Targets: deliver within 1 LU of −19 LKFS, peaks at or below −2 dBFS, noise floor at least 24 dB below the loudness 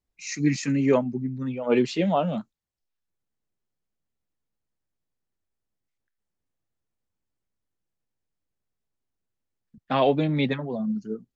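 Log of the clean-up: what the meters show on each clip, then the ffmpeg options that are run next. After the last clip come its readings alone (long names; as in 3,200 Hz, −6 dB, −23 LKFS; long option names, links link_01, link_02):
integrated loudness −25.0 LKFS; sample peak −8.5 dBFS; target loudness −19.0 LKFS
→ -af "volume=6dB"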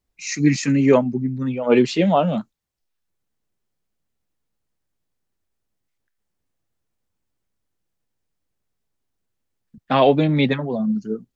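integrated loudness −19.0 LKFS; sample peak −2.5 dBFS; background noise floor −77 dBFS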